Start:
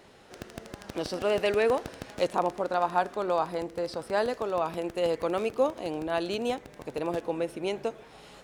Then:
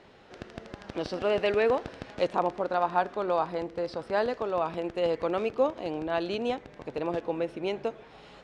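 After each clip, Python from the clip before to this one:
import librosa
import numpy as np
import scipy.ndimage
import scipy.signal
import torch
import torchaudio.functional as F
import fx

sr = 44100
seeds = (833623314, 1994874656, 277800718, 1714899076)

y = scipy.signal.sosfilt(scipy.signal.butter(2, 4300.0, 'lowpass', fs=sr, output='sos'), x)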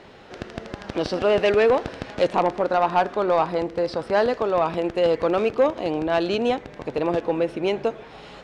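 y = 10.0 ** (-18.5 / 20.0) * np.tanh(x / 10.0 ** (-18.5 / 20.0))
y = y * librosa.db_to_amplitude(8.5)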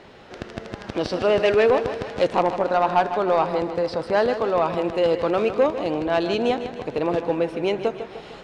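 y = fx.echo_feedback(x, sr, ms=151, feedback_pct=53, wet_db=-11.0)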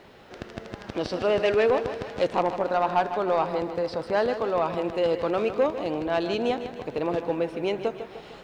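y = fx.quant_dither(x, sr, seeds[0], bits=12, dither='triangular')
y = y * librosa.db_to_amplitude(-4.0)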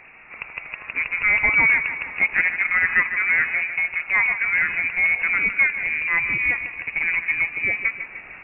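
y = fx.freq_invert(x, sr, carrier_hz=2700)
y = y * librosa.db_to_amplitude(4.0)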